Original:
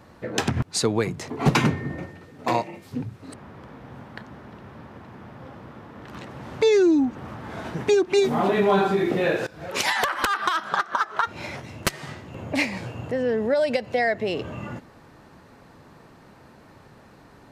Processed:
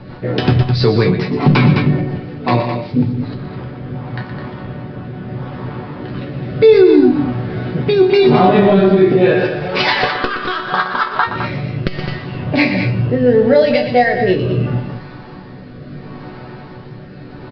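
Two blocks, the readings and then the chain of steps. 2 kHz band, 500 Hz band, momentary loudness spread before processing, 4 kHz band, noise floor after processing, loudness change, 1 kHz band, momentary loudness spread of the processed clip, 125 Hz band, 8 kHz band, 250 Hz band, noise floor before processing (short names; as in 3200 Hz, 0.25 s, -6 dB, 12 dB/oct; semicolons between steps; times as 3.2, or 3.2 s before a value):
+8.0 dB, +10.5 dB, 23 LU, +7.5 dB, -34 dBFS, +10.0 dB, +8.0 dB, 18 LU, +15.0 dB, under -15 dB, +11.5 dB, -51 dBFS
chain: G.711 law mismatch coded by mu; low shelf 370 Hz +7 dB; resonator bank B2 minor, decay 0.24 s; rotary speaker horn 5.5 Hz, later 0.75 Hz, at 2.97; loudspeakers at several distances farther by 41 m -10 dB, 72 m -9 dB; downsampling 11025 Hz; maximiser +22 dB; core saturation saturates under 100 Hz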